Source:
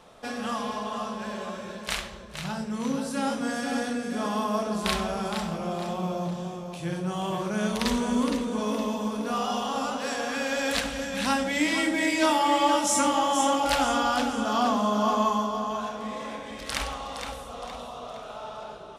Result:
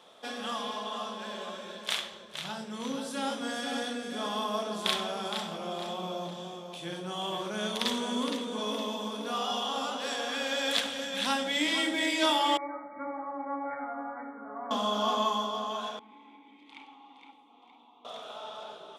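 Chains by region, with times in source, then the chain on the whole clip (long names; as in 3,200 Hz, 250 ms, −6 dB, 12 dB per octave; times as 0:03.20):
0:12.57–0:14.71: linear-phase brick-wall low-pass 2,300 Hz + tuned comb filter 140 Hz, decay 0.35 s, mix 90%
0:15.99–0:18.05: formant filter u + notch filter 5,400 Hz, Q 9.9 + saturating transformer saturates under 850 Hz
whole clip: high-pass filter 260 Hz 12 dB per octave; parametric band 3,400 Hz +11.5 dB 0.26 octaves; level −4 dB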